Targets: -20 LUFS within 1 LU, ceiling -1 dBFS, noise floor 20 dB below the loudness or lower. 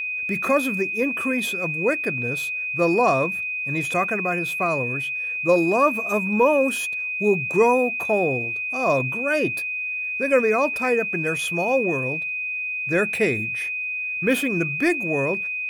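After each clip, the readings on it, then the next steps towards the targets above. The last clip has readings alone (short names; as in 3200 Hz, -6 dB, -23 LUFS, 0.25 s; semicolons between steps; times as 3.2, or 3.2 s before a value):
steady tone 2500 Hz; tone level -25 dBFS; loudness -22.0 LUFS; peak -7.5 dBFS; loudness target -20.0 LUFS
-> notch 2500 Hz, Q 30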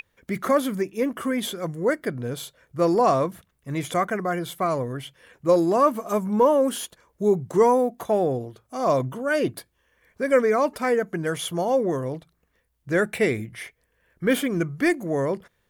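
steady tone none; loudness -24.0 LUFS; peak -9.0 dBFS; loudness target -20.0 LUFS
-> gain +4 dB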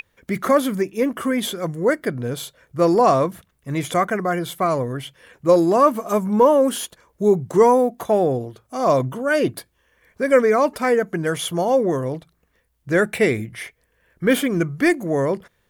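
loudness -20.0 LUFS; peak -5.0 dBFS; noise floor -67 dBFS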